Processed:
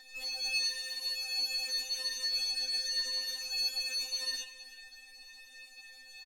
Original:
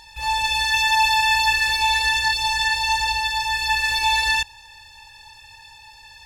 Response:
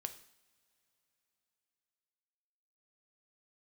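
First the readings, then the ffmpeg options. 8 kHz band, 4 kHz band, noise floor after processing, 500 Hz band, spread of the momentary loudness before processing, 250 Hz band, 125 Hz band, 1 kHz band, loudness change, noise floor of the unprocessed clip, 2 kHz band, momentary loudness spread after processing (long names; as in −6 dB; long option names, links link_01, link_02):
−9.0 dB, −9.5 dB, −54 dBFS, −6.5 dB, 5 LU, can't be measured, below −35 dB, −37.5 dB, −13.5 dB, −47 dBFS, −21.5 dB, 19 LU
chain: -filter_complex "[0:a]highshelf=frequency=8600:gain=4.5,alimiter=limit=-19dB:level=0:latency=1:release=14,flanger=delay=6.8:depth=6.3:regen=-78:speed=0.88:shape=triangular,asplit=2[link_01][link_02];[link_02]aecho=0:1:327:0.141[link_03];[link_01][link_03]amix=inputs=2:normalize=0,afftfilt=real='re*3.46*eq(mod(b,12),0)':imag='im*3.46*eq(mod(b,12),0)':win_size=2048:overlap=0.75"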